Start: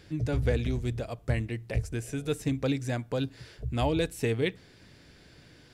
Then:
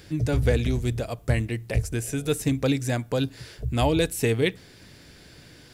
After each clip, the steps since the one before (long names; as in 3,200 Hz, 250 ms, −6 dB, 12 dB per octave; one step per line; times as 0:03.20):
high-shelf EQ 8,200 Hz +11 dB
level +5 dB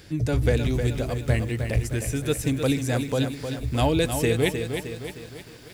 feedback echo at a low word length 309 ms, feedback 55%, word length 8 bits, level −7 dB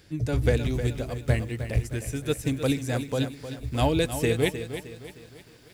expander for the loud parts 1.5 to 1, over −32 dBFS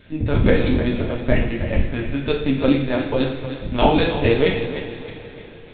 linear-prediction vocoder at 8 kHz pitch kept
coupled-rooms reverb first 0.58 s, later 4.1 s, from −18 dB, DRR −0.5 dB
level +5.5 dB